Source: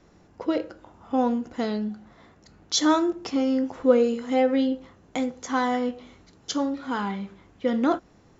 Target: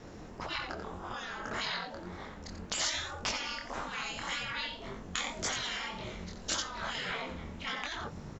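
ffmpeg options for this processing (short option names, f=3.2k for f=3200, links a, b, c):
-filter_complex "[0:a]asettb=1/sr,asplit=3[a][b][c];[a]atrim=end=1.164[d];[b]atrim=start=1.16:end=1.75,asetpts=PTS-STARTPTS,afade=t=in:d=0.004:c=qsin,afade=t=out:st=0.586:d=0.004:c=qsin,equalizer=f=1.5k:w=2.6:g=13[e];[c]atrim=start=1.746[f];[d][e]acrossfade=d=0.004:c1=hsin:c2=qsin[g];[g][f]acrossfade=d=0.004:c1=qsin:c2=hsin,asplit=2[h][i];[i]aecho=0:1:88:0.335[j];[h][j]amix=inputs=2:normalize=0,asubboost=boost=5.5:cutoff=70,asplit=2[k][l];[l]acompressor=threshold=-31dB:ratio=6,volume=-2.5dB[m];[k][m]amix=inputs=2:normalize=0,aeval=exprs='val(0)*sin(2*PI*130*n/s)':c=same,flanger=delay=19.5:depth=6.3:speed=1.8,afftfilt=real='re*lt(hypot(re,im),0.0316)':imag='im*lt(hypot(re,im),0.0316)':win_size=1024:overlap=0.75,volume=9dB"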